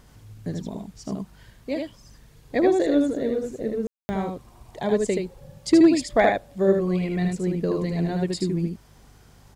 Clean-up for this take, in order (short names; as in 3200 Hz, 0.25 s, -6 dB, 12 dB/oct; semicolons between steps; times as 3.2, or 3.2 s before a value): clip repair -8.5 dBFS; de-hum 49.7 Hz, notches 3; room tone fill 3.87–4.09; inverse comb 77 ms -3.5 dB